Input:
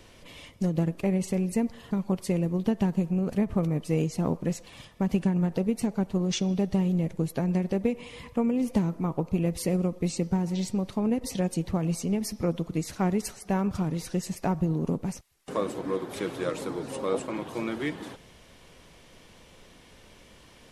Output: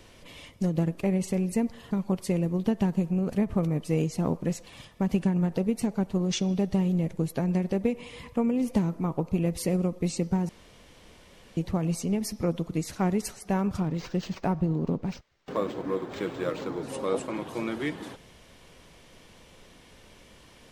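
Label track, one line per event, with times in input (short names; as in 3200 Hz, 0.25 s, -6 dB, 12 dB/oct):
10.490000	11.570000	room tone
13.800000	16.830000	decimation joined by straight lines rate divided by 4×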